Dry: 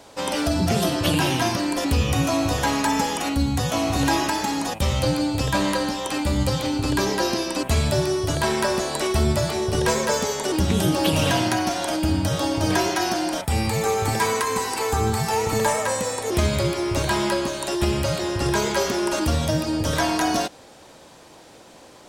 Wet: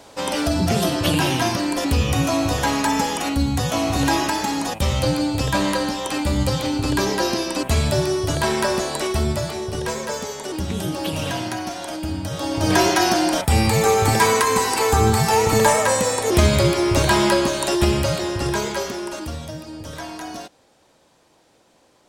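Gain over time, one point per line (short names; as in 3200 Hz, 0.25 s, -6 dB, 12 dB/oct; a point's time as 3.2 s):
8.81 s +1.5 dB
9.88 s -5 dB
12.3 s -5 dB
12.82 s +5.5 dB
17.65 s +5.5 dB
18.63 s -1.5 dB
19.56 s -11 dB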